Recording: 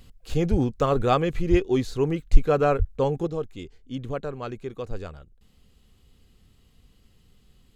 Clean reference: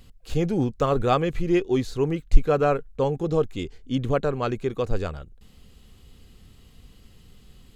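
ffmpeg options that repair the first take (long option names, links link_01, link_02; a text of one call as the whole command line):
ffmpeg -i in.wav -filter_complex "[0:a]asplit=3[link_01][link_02][link_03];[link_01]afade=type=out:start_time=0.5:duration=0.02[link_04];[link_02]highpass=frequency=140:width=0.5412,highpass=frequency=140:width=1.3066,afade=type=in:start_time=0.5:duration=0.02,afade=type=out:start_time=0.62:duration=0.02[link_05];[link_03]afade=type=in:start_time=0.62:duration=0.02[link_06];[link_04][link_05][link_06]amix=inputs=3:normalize=0,asplit=3[link_07][link_08][link_09];[link_07]afade=type=out:start_time=1.5:duration=0.02[link_10];[link_08]highpass=frequency=140:width=0.5412,highpass=frequency=140:width=1.3066,afade=type=in:start_time=1.5:duration=0.02,afade=type=out:start_time=1.62:duration=0.02[link_11];[link_09]afade=type=in:start_time=1.62:duration=0.02[link_12];[link_10][link_11][link_12]amix=inputs=3:normalize=0,asplit=3[link_13][link_14][link_15];[link_13]afade=type=out:start_time=2.78:duration=0.02[link_16];[link_14]highpass=frequency=140:width=0.5412,highpass=frequency=140:width=1.3066,afade=type=in:start_time=2.78:duration=0.02,afade=type=out:start_time=2.9:duration=0.02[link_17];[link_15]afade=type=in:start_time=2.9:duration=0.02[link_18];[link_16][link_17][link_18]amix=inputs=3:normalize=0,asetnsamples=nb_out_samples=441:pad=0,asendcmd='3.27 volume volume 7.5dB',volume=0dB" out.wav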